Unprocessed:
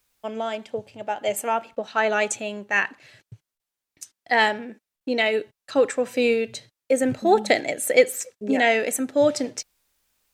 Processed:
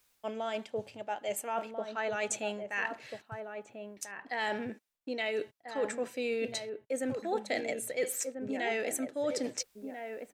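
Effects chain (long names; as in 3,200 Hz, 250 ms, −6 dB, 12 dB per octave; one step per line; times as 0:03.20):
low-shelf EQ 150 Hz −6 dB
reversed playback
downward compressor 4 to 1, threshold −33 dBFS, peak gain reduction 19 dB
reversed playback
slap from a distant wall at 230 metres, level −6 dB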